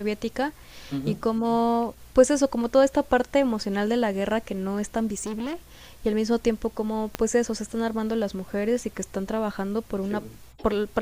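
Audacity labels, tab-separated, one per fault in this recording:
5.140000	5.550000	clipping −27 dBFS
7.150000	7.150000	click −11 dBFS

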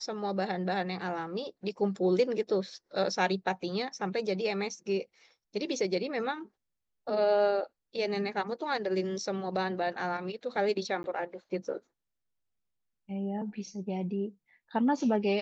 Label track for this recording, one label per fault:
11.030000	11.040000	drop-out

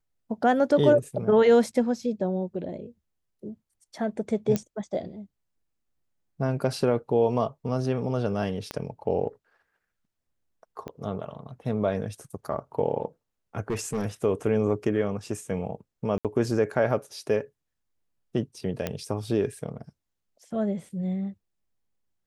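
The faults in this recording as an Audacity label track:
4.560000	4.560000	click −13 dBFS
8.710000	8.710000	click −16 dBFS
10.880000	10.880000	click −24 dBFS
13.700000	14.060000	clipping −23.5 dBFS
16.180000	16.250000	drop-out 67 ms
18.870000	18.870000	click −13 dBFS

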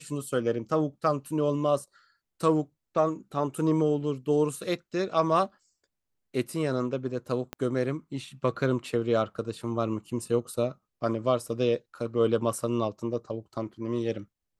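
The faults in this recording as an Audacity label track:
7.530000	7.530000	click −19 dBFS

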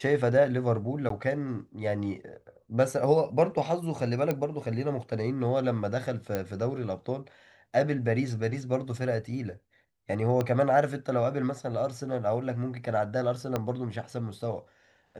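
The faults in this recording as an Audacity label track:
1.090000	1.100000	drop-out 13 ms
4.310000	4.310000	click −15 dBFS
6.350000	6.350000	click −16 dBFS
10.410000	10.410000	click −16 dBFS
13.560000	13.560000	click −15 dBFS

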